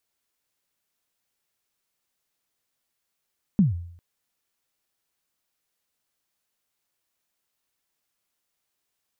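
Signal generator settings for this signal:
synth kick length 0.40 s, from 220 Hz, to 86 Hz, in 146 ms, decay 0.65 s, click off, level −12 dB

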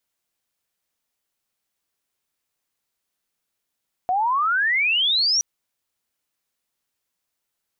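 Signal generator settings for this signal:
glide logarithmic 710 Hz → 5,900 Hz −18 dBFS → −16.5 dBFS 1.32 s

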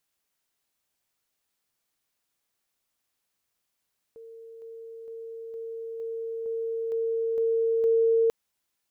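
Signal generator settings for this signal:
level staircase 455 Hz −42.5 dBFS, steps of 3 dB, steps 9, 0.46 s 0.00 s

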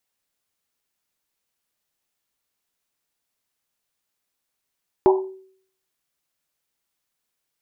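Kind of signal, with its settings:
drum after Risset, pitch 380 Hz, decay 0.59 s, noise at 870 Hz, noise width 260 Hz, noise 25%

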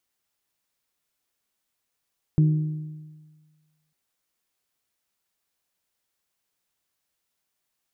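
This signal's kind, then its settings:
struck metal bell, lowest mode 154 Hz, decay 1.48 s, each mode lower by 12 dB, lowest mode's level −13.5 dB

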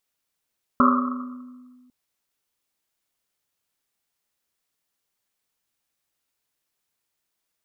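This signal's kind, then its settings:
drum after Risset, pitch 250 Hz, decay 1.82 s, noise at 1,200 Hz, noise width 270 Hz, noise 50%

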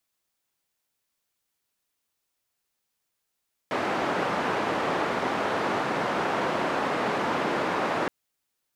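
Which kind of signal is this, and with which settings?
band-limited noise 200–1,100 Hz, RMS −27 dBFS 4.37 s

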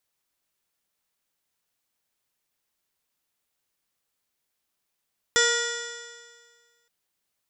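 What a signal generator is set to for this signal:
stiff-string partials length 1.52 s, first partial 469 Hz, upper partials −11.5/0.5/1/−14.5/−13/0/−13/−13/−3.5/−6/−12/−1/−12.5 dB, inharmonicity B 0.0023, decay 1.70 s, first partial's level −23.5 dB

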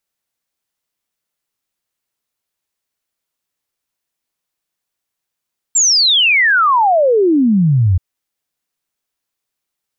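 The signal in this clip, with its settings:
exponential sine sweep 7,600 Hz → 85 Hz 2.23 s −8.5 dBFS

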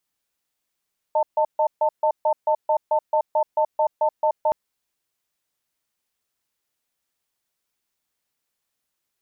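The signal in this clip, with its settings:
tone pair in a cadence 616 Hz, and 892 Hz, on 0.08 s, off 0.14 s, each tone −19 dBFS 3.37 s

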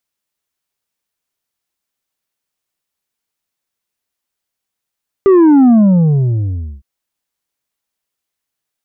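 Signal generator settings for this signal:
bass drop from 400 Hz, over 1.56 s, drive 5 dB, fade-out 1.12 s, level −5 dB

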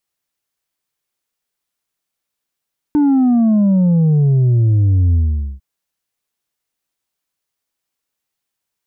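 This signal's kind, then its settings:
bass drop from 300 Hz, over 2.65 s, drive 3.5 dB, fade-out 0.46 s, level −10 dB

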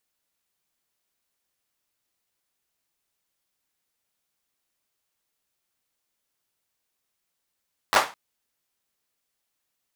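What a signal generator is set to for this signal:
synth clap length 0.21 s, apart 10 ms, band 1,000 Hz, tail 0.30 s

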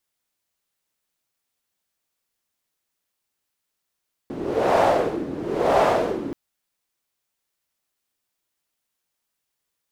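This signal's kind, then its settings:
wind from filtered noise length 2.03 s, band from 300 Hz, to 680 Hz, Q 3.2, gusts 2, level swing 14 dB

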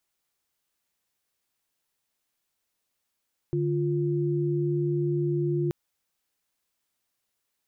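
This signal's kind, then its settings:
held notes D3/F4 sine, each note −26 dBFS 2.18 s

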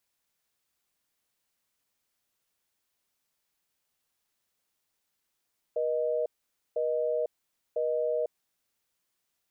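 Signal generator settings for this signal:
call progress tone busy tone, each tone −28.5 dBFS 2.96 s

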